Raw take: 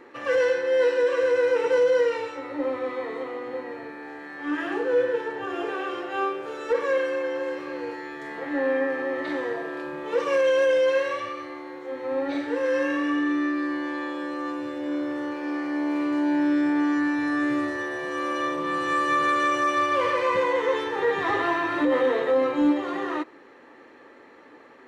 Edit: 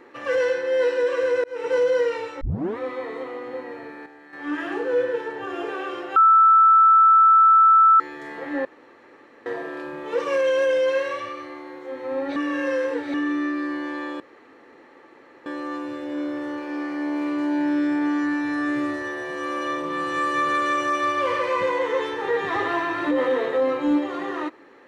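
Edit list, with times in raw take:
0:01.44–0:01.75: fade in
0:02.41: tape start 0.37 s
0:04.06–0:04.33: clip gain −8 dB
0:06.16–0:08.00: beep over 1,320 Hz −10.5 dBFS
0:08.65–0:09.46: fill with room tone
0:12.36–0:13.14: reverse
0:14.20: splice in room tone 1.26 s

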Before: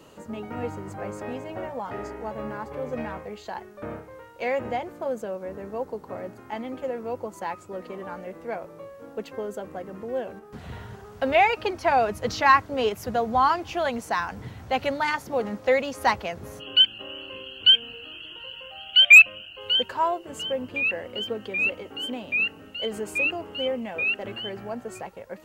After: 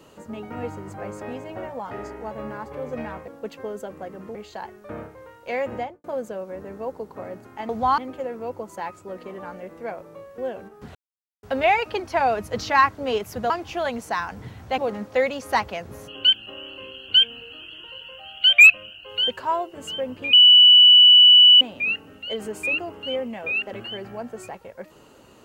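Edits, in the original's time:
0:04.70–0:04.97: fade out and dull
0:09.02–0:10.09: move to 0:03.28
0:10.66–0:11.14: silence
0:13.21–0:13.50: move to 0:06.62
0:14.78–0:15.30: remove
0:20.85–0:22.13: beep over 2,960 Hz −7.5 dBFS

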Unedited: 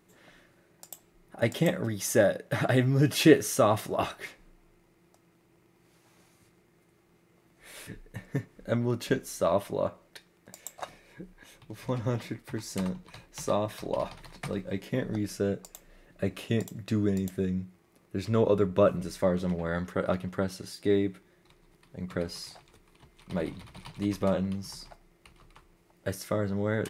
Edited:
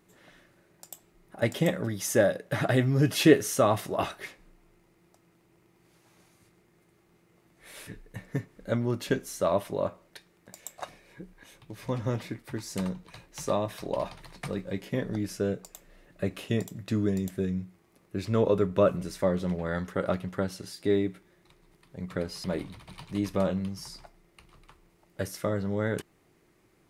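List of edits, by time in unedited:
0:22.44–0:23.31: remove

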